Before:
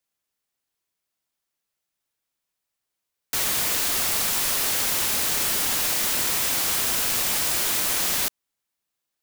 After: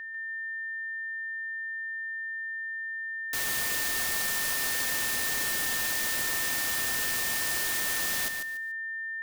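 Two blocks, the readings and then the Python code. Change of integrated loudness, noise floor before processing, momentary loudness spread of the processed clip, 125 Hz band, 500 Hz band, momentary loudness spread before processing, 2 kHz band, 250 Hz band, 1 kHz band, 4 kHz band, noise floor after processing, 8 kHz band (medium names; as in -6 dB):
-7.5 dB, -83 dBFS, 7 LU, -6.5 dB, -7.0 dB, 1 LU, +4.0 dB, -6.5 dB, -6.5 dB, -6.5 dB, -36 dBFS, -6.5 dB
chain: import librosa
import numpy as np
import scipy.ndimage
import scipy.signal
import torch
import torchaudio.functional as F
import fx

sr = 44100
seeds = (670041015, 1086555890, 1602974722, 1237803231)

y = x + 10.0 ** (-29.0 / 20.0) * np.sin(2.0 * np.pi * 1800.0 * np.arange(len(x)) / sr)
y = fx.echo_feedback(y, sr, ms=145, feedback_pct=25, wet_db=-7.0)
y = y * librosa.db_to_amplitude(-7.5)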